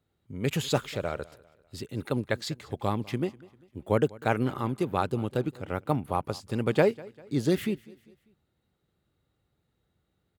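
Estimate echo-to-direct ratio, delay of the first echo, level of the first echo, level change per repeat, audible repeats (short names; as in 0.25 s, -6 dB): -21.0 dB, 0.198 s, -22.0 dB, -7.0 dB, 2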